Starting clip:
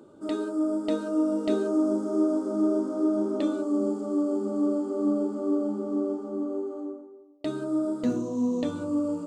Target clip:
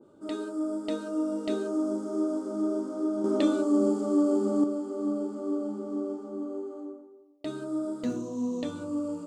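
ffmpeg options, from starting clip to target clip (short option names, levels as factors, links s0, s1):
-filter_complex "[0:a]asettb=1/sr,asplit=3[s0][s1][s2];[s0]atrim=end=3.244[s3];[s1]atrim=start=3.24:end=4.64,asetpts=PTS-STARTPTS,afade=t=in:d=0.004:c=qsin,afade=t=out:st=1.396:d=0.004:c=qsin,acontrast=79[s4];[s2]atrim=start=4.636[s5];[s3][s4]acrossfade=d=0.004:c1=hsin:c2=qsin[s6];[s6][s5]acrossfade=d=0.004:c1=qsin:c2=hsin,adynamicequalizer=threshold=0.00891:dfrequency=1500:dqfactor=0.7:tfrequency=1500:tqfactor=0.7:attack=5:release=100:ratio=0.375:range=2:mode=boostabove:tftype=highshelf,volume=0.596"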